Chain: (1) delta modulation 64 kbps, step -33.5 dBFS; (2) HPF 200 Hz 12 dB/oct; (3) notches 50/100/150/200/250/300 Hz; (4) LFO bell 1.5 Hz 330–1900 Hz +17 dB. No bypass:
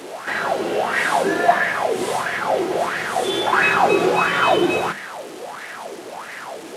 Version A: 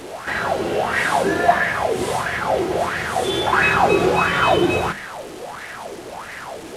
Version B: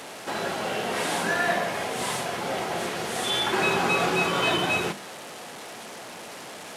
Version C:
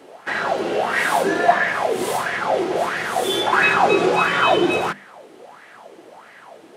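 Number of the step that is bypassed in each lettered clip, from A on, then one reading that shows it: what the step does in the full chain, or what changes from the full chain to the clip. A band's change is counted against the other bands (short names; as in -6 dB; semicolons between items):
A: 2, 125 Hz band +7.0 dB; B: 4, 8 kHz band +6.5 dB; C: 1, momentary loudness spread change -10 LU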